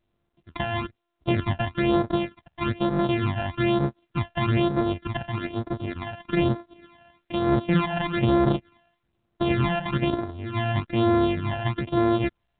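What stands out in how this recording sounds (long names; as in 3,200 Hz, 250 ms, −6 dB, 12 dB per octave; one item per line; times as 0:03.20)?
a buzz of ramps at a fixed pitch in blocks of 128 samples
phaser sweep stages 12, 1.1 Hz, lowest notch 370–2,800 Hz
mu-law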